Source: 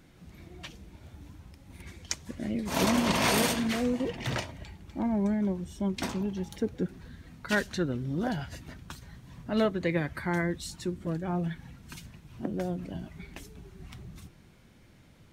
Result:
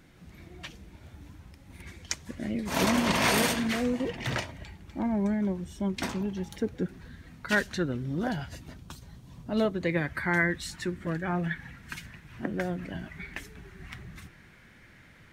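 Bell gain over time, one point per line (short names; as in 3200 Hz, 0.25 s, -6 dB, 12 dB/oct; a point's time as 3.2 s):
bell 1800 Hz 1 oct
8.23 s +3.5 dB
8.88 s -6.5 dB
9.61 s -6.5 dB
9.94 s +3 dB
10.62 s +14 dB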